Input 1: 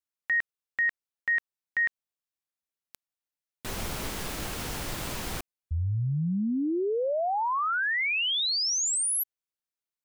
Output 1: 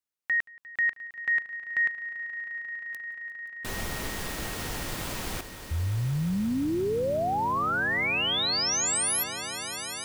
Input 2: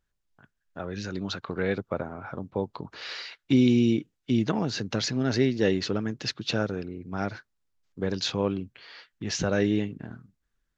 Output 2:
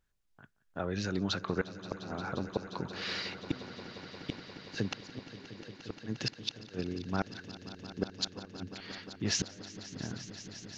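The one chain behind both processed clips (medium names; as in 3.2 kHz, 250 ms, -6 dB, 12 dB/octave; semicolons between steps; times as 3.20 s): inverted gate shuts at -18 dBFS, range -34 dB; on a send: echo with a slow build-up 176 ms, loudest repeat 5, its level -17 dB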